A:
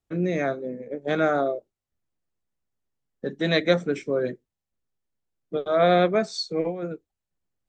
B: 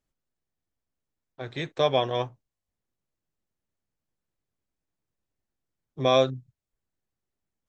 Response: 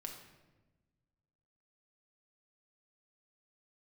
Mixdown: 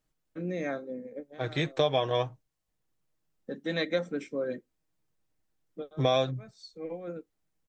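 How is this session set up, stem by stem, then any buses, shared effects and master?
-8.0 dB, 0.25 s, no send, comb 3.8 ms, depth 41%; auto duck -19 dB, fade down 0.20 s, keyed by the second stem
+3.0 dB, 0.00 s, no send, comb 6.4 ms, depth 40%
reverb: off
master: compressor 3:1, threshold -24 dBFS, peak gain reduction 9 dB

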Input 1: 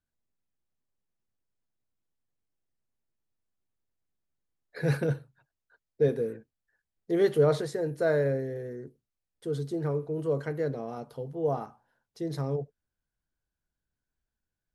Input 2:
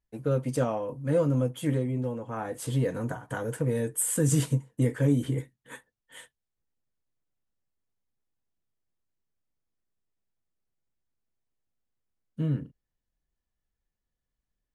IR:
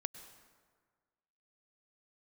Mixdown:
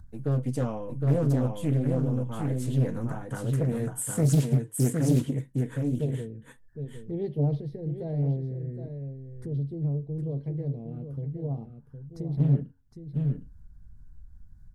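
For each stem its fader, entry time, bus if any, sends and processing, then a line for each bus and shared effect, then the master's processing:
-14.0 dB, 0.00 s, muted 3.23–5.22, no send, echo send -9 dB, tilt -2.5 dB/oct; upward compressor, threshold -23 dBFS; envelope phaser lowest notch 430 Hz, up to 1400 Hz, full sweep at -23.5 dBFS
-1.5 dB, 0.00 s, no send, echo send -3.5 dB, HPF 140 Hz 12 dB/oct; flange 0.35 Hz, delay 1.9 ms, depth 3.8 ms, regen -89%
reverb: off
echo: echo 0.762 s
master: tone controls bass +14 dB, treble +2 dB; Doppler distortion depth 0.6 ms

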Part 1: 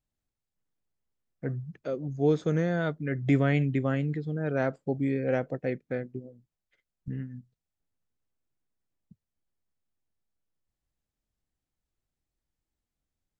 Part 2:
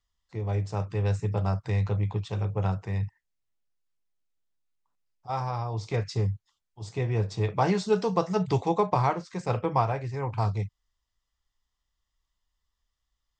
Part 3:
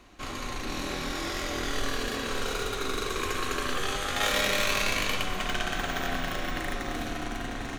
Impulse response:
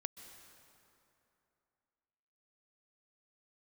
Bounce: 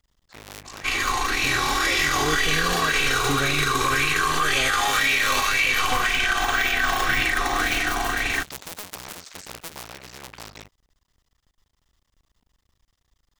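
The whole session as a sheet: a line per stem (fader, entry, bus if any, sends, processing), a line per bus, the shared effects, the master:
-2.5 dB, 0.00 s, no send, dry
-2.0 dB, 0.00 s, no send, cycle switcher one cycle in 2, muted; spectral compressor 4:1
+2.0 dB, 0.65 s, no send, high shelf 2500 Hz +10.5 dB; comb 2.6 ms, depth 52%; LFO bell 1.9 Hz 900–2500 Hz +15 dB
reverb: off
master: limiter -11.5 dBFS, peak gain reduction 14.5 dB

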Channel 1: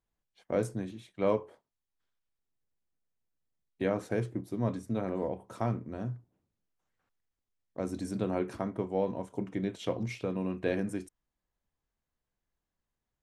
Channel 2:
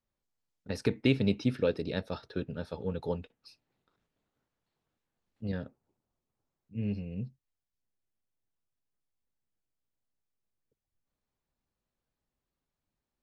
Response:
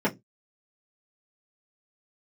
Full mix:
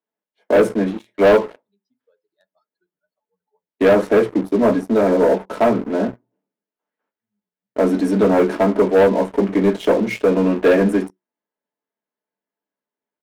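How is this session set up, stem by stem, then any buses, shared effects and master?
+0.5 dB, 0.00 s, send -6.5 dB, bell 7300 Hz -7 dB 1.5 oct
-13.5 dB, 0.45 s, send -23 dB, per-bin expansion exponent 3; compressor 2.5:1, threshold -41 dBFS, peak gain reduction 12.5 dB; auto duck -10 dB, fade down 1.10 s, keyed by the first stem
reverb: on, pre-delay 3 ms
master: HPF 400 Hz 12 dB/oct; sample leveller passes 3

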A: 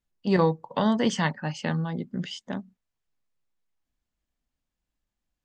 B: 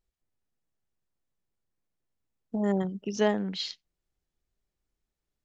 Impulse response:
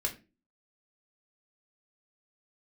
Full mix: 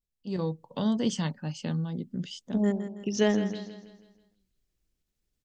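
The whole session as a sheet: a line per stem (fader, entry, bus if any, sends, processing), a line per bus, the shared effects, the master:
-10.5 dB, 0.00 s, no send, no echo send, bell 1900 Hz -9.5 dB 0.68 oct
-4.5 dB, 0.00 s, no send, echo send -11 dB, ending taper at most 140 dB/s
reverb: off
echo: feedback echo 0.162 s, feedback 44%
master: bell 910 Hz -9 dB 1.7 oct; AGC gain up to 9 dB

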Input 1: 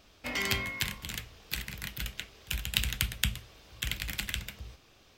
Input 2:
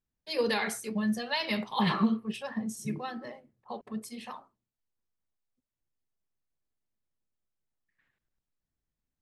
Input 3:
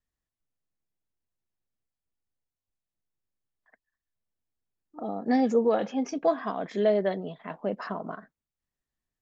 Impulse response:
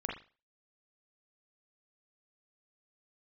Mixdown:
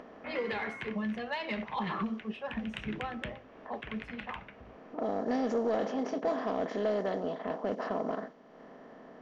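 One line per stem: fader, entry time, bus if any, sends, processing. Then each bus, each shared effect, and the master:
-2.0 dB, 0.00 s, bus A, no send, LPF 2900 Hz
+0.5 dB, 0.00 s, bus A, no send, dry
-9.0 dB, 0.00 s, no bus, no send, per-bin compression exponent 0.4
bus A: 0.0 dB, three-band isolator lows -14 dB, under 170 Hz, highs -15 dB, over 2900 Hz; compressor 6:1, threshold -30 dBFS, peak gain reduction 8.5 dB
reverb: off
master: low-pass opened by the level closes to 2100 Hz, open at -22.5 dBFS; upward compressor, threshold -43 dBFS; soft clip -21 dBFS, distortion -21 dB

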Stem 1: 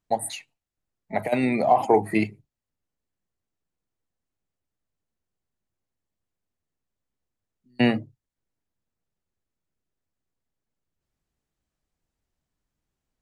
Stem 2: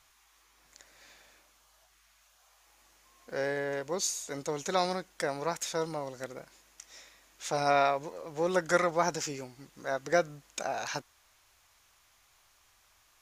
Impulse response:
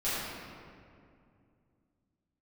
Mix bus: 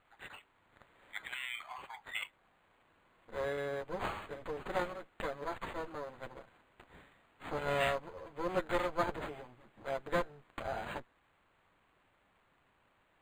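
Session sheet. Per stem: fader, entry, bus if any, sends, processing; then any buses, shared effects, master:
-16.0 dB, 0.00 s, no send, steep high-pass 1300 Hz 36 dB/oct; AGC gain up to 12.5 dB
-2.5 dB, 0.00 s, no send, minimum comb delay 9 ms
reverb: off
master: decimation joined by straight lines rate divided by 8×

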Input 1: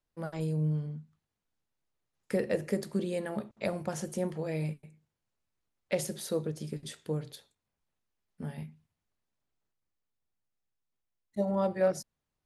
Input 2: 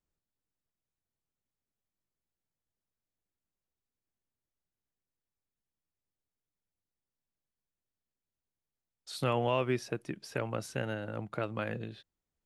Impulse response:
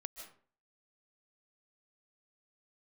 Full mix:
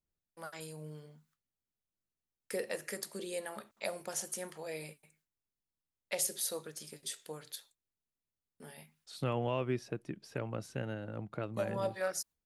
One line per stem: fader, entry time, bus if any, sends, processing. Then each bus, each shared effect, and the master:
-6.0 dB, 0.20 s, no send, gate with hold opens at -52 dBFS; tilt +4 dB/oct; LFO bell 1.3 Hz 390–1600 Hz +7 dB
-7.0 dB, 0.00 s, no send, low shelf 390 Hz +8.5 dB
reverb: off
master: low shelf 200 Hz -3.5 dB

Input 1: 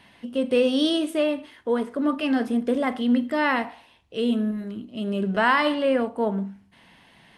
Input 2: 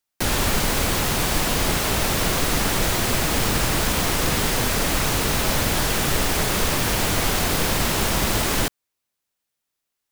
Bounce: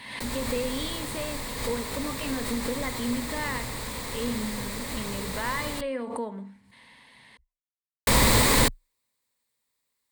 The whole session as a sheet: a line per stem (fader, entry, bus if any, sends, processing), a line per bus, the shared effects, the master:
-2.0 dB, 0.00 s, no send, tilt shelf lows -4 dB, about 1100 Hz; compressor 2.5:1, threshold -33 dBFS, peak gain reduction 12 dB
+1.0 dB, 0.00 s, muted 5.81–8.07, no send, auto duck -15 dB, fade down 0.20 s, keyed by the first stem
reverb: off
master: ripple EQ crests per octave 0.98, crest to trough 8 dB; backwards sustainer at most 60 dB/s

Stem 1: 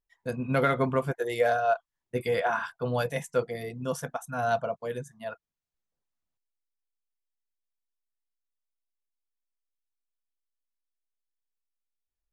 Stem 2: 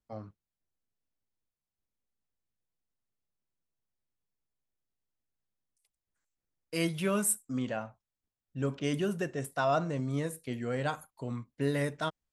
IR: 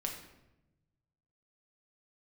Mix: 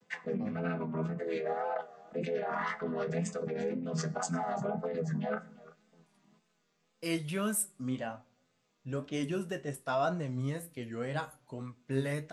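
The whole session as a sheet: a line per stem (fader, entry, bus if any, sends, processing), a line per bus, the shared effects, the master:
-5.5 dB, 0.00 s, send -14 dB, echo send -19 dB, chord vocoder major triad, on E3; limiter -20.5 dBFS, peak gain reduction 9 dB; fast leveller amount 100%
+0.5 dB, 0.30 s, send -23.5 dB, no echo send, dry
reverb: on, RT60 0.95 s, pre-delay 5 ms
echo: echo 0.345 s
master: flange 1.2 Hz, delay 9.9 ms, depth 5.7 ms, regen +52%; vibrato 1.9 Hz 71 cents

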